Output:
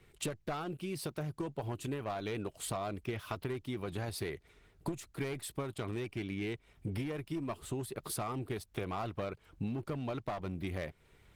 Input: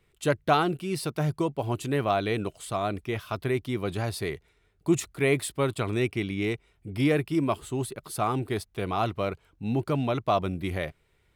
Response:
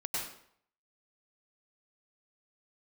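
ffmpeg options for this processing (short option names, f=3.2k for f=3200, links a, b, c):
-af "aeval=exprs='clip(val(0),-1,0.0708)':c=same,acompressor=threshold=-39dB:ratio=20,volume=5.5dB" -ar 48000 -c:a libopus -b:a 16k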